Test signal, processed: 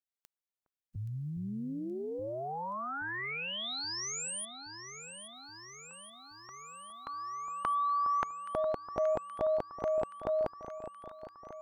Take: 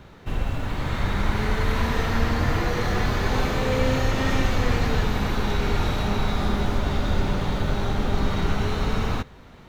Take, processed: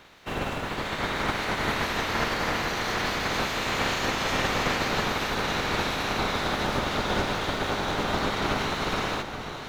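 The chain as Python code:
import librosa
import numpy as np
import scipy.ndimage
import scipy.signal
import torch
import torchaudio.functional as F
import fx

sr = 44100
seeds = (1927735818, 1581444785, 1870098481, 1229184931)

y = fx.spec_clip(x, sr, under_db=23)
y = fx.echo_alternate(y, sr, ms=412, hz=1300.0, feedback_pct=82, wet_db=-9.5)
y = fx.doppler_dist(y, sr, depth_ms=0.16)
y = y * 10.0 ** (-6.5 / 20.0)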